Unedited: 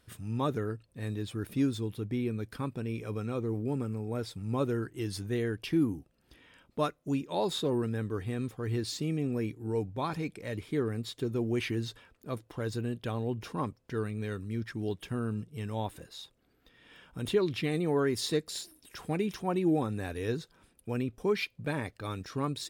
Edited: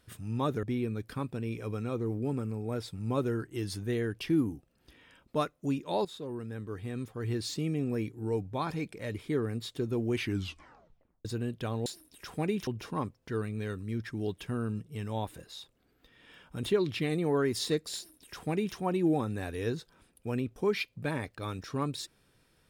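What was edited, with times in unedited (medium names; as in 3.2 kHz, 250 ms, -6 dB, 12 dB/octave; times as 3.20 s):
0.63–2.06 s: delete
7.48–8.90 s: fade in, from -13.5 dB
11.67 s: tape stop 1.01 s
18.57–19.38 s: copy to 13.29 s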